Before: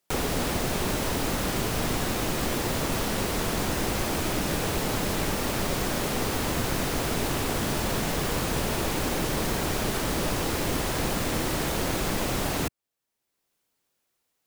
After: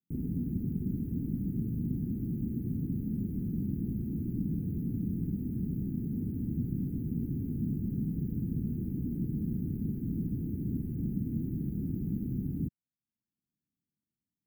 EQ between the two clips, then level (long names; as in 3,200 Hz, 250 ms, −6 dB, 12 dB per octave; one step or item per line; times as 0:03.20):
high-pass filter 340 Hz 6 dB per octave
inverse Chebyshev band-stop filter 560–6,700 Hz, stop band 50 dB
high-frequency loss of the air 270 metres
+8.5 dB